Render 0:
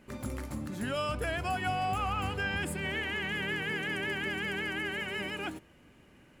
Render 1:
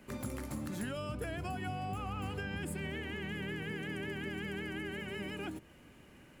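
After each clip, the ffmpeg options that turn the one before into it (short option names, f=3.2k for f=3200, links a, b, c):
-filter_complex "[0:a]highshelf=f=9.1k:g=5.5,acrossover=split=84|420[a][b][c];[a]acompressor=threshold=-53dB:ratio=4[d];[b]acompressor=threshold=-39dB:ratio=4[e];[c]acompressor=threshold=-45dB:ratio=4[f];[d][e][f]amix=inputs=3:normalize=0,volume=1dB"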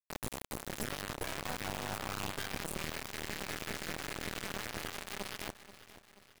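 -af "acrusher=bits=3:dc=4:mix=0:aa=0.000001,aecho=1:1:482|964|1446|1928|2410:0.237|0.109|0.0502|0.0231|0.0106,aeval=exprs='0.0501*(cos(1*acos(clip(val(0)/0.0501,-1,1)))-cos(1*PI/2))+0.00251*(cos(8*acos(clip(val(0)/0.0501,-1,1)))-cos(8*PI/2))':c=same,volume=1.5dB"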